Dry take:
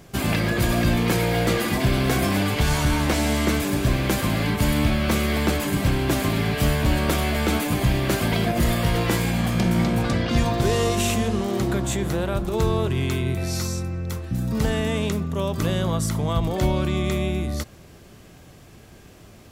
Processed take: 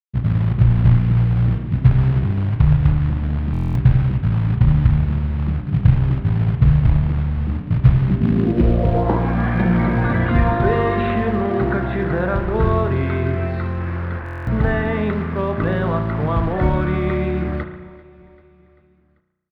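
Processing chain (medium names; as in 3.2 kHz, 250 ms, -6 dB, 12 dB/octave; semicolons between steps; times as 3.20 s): spectral gate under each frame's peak -30 dB strong; peaking EQ 3.9 kHz +13 dB 0.3 oct; bit crusher 6-bit; low-pass sweep 130 Hz -> 1.7 kHz, 7.95–9.50 s; short-mantissa float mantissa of 2-bit; distance through air 430 m; feedback delay 391 ms, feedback 59%, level -22.5 dB; spring tank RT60 1.1 s, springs 33 ms, chirp 45 ms, DRR 5.5 dB; buffer glitch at 3.52/14.24 s, samples 1024, times 9; trim +4 dB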